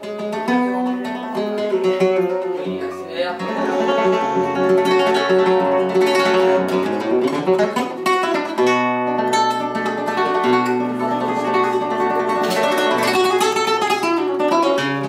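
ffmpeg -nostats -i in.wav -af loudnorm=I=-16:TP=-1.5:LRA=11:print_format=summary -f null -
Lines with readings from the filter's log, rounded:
Input Integrated:    -17.9 LUFS
Input True Peak:      -5.9 dBTP
Input LRA:             3.7 LU
Input Threshold:     -27.9 LUFS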